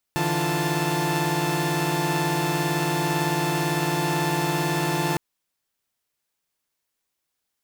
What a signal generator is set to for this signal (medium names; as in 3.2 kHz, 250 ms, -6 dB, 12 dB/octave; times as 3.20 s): chord D3/E3/F4/A5 saw, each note -25 dBFS 5.01 s